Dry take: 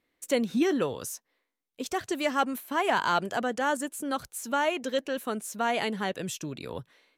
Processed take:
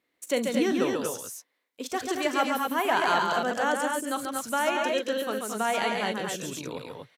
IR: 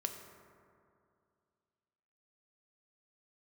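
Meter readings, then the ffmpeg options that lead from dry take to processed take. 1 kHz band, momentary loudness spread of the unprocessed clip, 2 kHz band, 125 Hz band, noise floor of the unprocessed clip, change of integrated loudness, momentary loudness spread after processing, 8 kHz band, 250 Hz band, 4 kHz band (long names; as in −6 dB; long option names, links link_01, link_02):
+2.5 dB, 11 LU, +2.5 dB, −1.5 dB, −82 dBFS, +2.0 dB, 11 LU, +2.5 dB, +0.5 dB, +2.5 dB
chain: -af "highpass=frequency=210:poles=1,aecho=1:1:40|44|138|223|242:0.178|0.112|0.596|0.376|0.562"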